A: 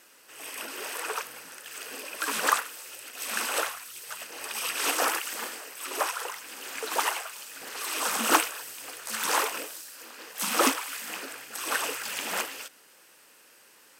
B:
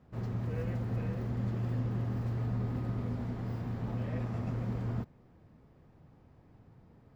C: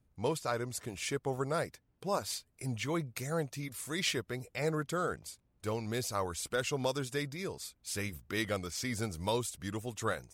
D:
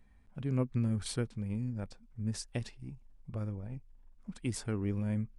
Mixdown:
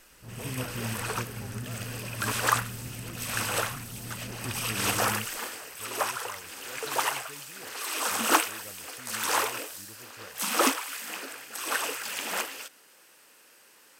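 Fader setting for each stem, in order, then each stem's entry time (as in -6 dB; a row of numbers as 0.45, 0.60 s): -0.5, -7.0, -14.5, -5.5 dB; 0.00, 0.10, 0.15, 0.00 s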